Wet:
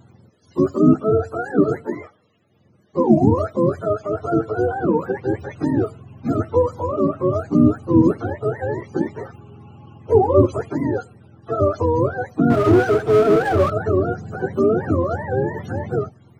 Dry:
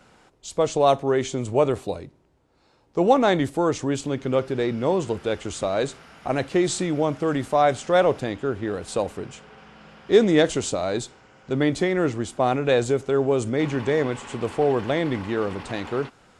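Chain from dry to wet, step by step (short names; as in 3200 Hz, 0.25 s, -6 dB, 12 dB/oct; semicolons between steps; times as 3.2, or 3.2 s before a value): spectrum mirrored in octaves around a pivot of 420 Hz; 12.5–13.7 power-law curve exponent 0.7; gain +5 dB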